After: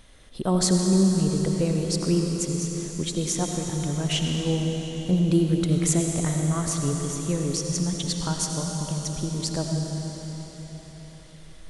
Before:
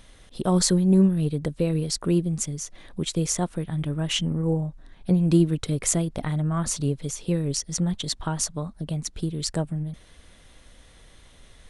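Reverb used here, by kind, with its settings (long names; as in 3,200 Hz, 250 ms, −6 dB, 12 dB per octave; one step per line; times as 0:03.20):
comb and all-pass reverb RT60 4.5 s, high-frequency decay 1×, pre-delay 45 ms, DRR 1.5 dB
level −1.5 dB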